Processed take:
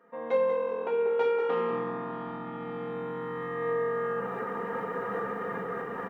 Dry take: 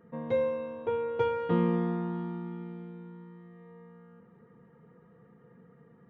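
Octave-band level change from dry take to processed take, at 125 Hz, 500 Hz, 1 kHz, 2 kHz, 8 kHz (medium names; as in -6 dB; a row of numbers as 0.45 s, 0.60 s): -7.5 dB, +5.0 dB, +6.5 dB, +9.0 dB, no reading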